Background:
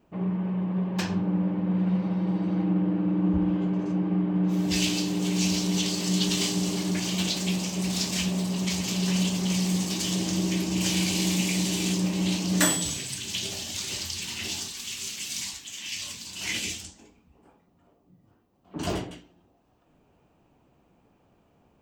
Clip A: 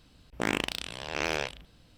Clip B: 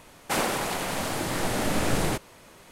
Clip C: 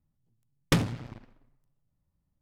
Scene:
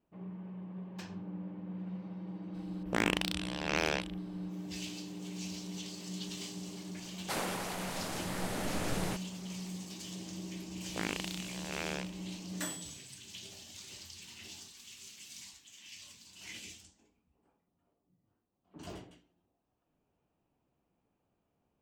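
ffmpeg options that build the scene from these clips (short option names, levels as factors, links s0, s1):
-filter_complex "[1:a]asplit=2[s0][s1];[0:a]volume=0.15[s2];[s0]atrim=end=1.97,asetpts=PTS-STARTPTS,volume=0.841,afade=t=in:d=0.02,afade=t=out:st=1.95:d=0.02,adelay=2530[s3];[2:a]atrim=end=2.71,asetpts=PTS-STARTPTS,volume=0.316,afade=t=in:d=0.004:c=hsin,afade=t=out:st=2.706:d=0.004:c=hsin,adelay=6990[s4];[s1]atrim=end=1.97,asetpts=PTS-STARTPTS,volume=0.376,afade=t=in:d=0.004:c=hsin,afade=t=out:st=1.966:d=0.004:c=hsin,adelay=10560[s5];[s2][s3][s4][s5]amix=inputs=4:normalize=0"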